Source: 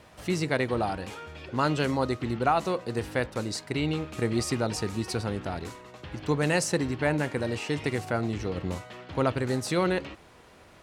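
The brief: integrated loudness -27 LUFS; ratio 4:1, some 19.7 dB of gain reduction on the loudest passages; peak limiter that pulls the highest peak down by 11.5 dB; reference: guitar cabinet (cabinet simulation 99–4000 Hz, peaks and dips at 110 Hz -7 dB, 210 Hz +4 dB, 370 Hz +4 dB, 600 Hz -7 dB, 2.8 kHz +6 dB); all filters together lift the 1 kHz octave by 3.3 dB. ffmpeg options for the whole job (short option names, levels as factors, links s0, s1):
-af "equalizer=f=1000:t=o:g=5.5,acompressor=threshold=0.00891:ratio=4,alimiter=level_in=4.47:limit=0.0631:level=0:latency=1,volume=0.224,highpass=99,equalizer=f=110:t=q:w=4:g=-7,equalizer=f=210:t=q:w=4:g=4,equalizer=f=370:t=q:w=4:g=4,equalizer=f=600:t=q:w=4:g=-7,equalizer=f=2800:t=q:w=4:g=6,lowpass=f=4000:w=0.5412,lowpass=f=4000:w=1.3066,volume=9.44"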